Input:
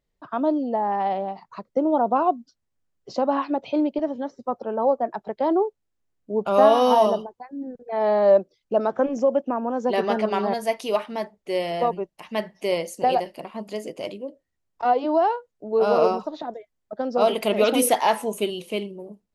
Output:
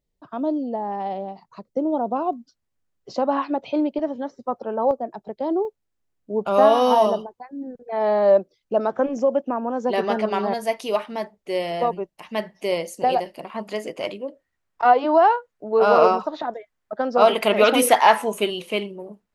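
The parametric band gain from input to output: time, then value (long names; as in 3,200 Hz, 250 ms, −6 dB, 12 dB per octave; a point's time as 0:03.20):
parametric band 1,500 Hz 2.1 octaves
−7.5 dB
from 0:02.33 +1.5 dB
from 0:04.91 −9 dB
from 0:05.65 +1 dB
from 0:13.50 +9.5 dB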